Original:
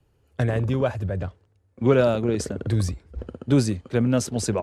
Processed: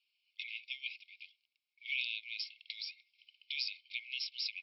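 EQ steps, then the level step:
linear-phase brick-wall band-pass 2,100–5,600 Hz
high-frequency loss of the air 76 metres
+3.5 dB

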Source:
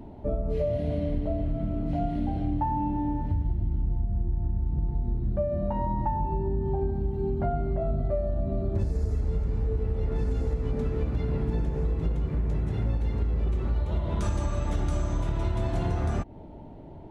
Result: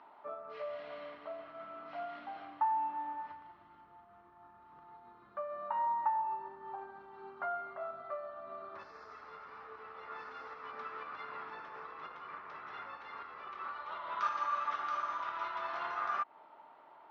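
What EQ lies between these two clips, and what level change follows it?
high-pass with resonance 1,200 Hz, resonance Q 5.1
Chebyshev low-pass filter 5,500 Hz, order 4
high-frequency loss of the air 130 metres
−1.5 dB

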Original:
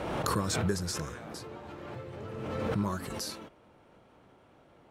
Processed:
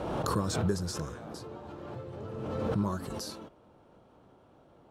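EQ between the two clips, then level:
parametric band 2,100 Hz −9 dB 0.91 octaves
high-shelf EQ 5,300 Hz −6.5 dB
+1.0 dB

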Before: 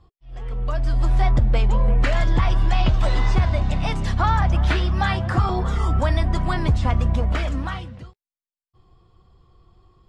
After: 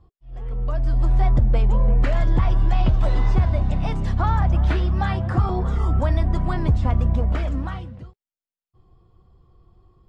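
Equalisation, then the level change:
tilt shelving filter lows +5 dB, about 1,200 Hz
−4.5 dB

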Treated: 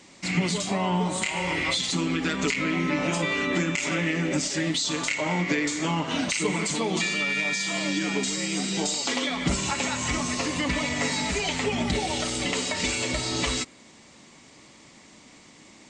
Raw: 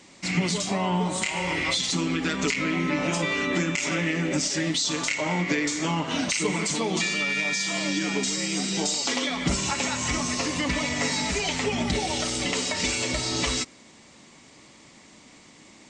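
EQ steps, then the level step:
dynamic equaliser 5,600 Hz, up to −5 dB, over −45 dBFS, Q 3.8
0.0 dB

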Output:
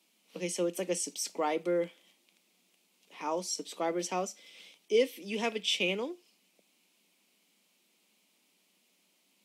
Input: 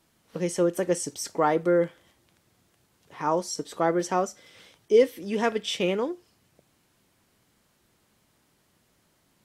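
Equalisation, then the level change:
Chebyshev high-pass filter 180 Hz, order 6
high shelf with overshoot 2,000 Hz +6 dB, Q 3
−7.0 dB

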